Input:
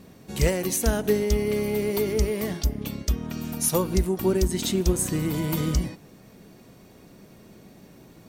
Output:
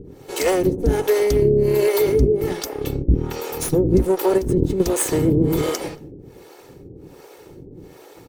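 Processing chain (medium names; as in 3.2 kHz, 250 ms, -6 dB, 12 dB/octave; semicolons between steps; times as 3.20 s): comb filter that takes the minimum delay 2.3 ms; peak limiter -18 dBFS, peak gain reduction 7 dB; 4.38–4.80 s: compressor with a negative ratio -31 dBFS, ratio -1; peaking EQ 230 Hz +10.5 dB 2.7 oct; speakerphone echo 230 ms, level -18 dB; harmonic tremolo 1.3 Hz, depth 100%, crossover 440 Hz; 1.41–1.88 s: rippled EQ curve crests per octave 1.4, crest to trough 9 dB; trim +8.5 dB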